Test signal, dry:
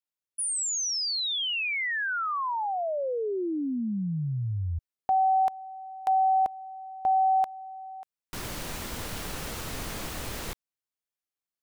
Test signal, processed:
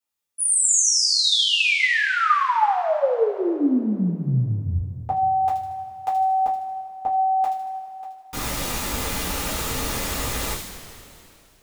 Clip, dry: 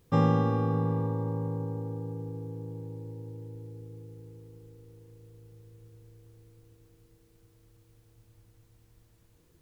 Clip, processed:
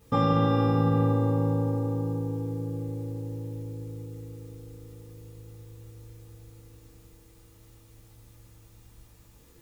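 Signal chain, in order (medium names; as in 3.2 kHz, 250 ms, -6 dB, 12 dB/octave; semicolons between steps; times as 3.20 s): peak limiter -22 dBFS; on a send: feedback echo behind a high-pass 77 ms, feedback 48%, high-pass 3.4 kHz, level -3.5 dB; on the sum: two-slope reverb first 0.22 s, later 2.7 s, from -18 dB, DRR -8.5 dB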